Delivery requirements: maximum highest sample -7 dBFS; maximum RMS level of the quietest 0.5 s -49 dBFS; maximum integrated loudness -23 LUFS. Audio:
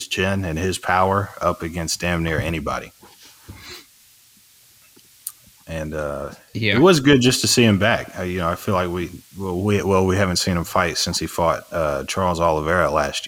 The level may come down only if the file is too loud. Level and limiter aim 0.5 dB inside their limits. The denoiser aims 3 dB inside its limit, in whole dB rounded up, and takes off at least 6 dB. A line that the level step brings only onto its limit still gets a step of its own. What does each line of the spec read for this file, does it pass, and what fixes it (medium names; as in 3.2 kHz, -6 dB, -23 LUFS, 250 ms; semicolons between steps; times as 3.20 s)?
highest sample -3.0 dBFS: fail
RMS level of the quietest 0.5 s -52 dBFS: pass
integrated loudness -19.5 LUFS: fail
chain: trim -4 dB; peak limiter -7.5 dBFS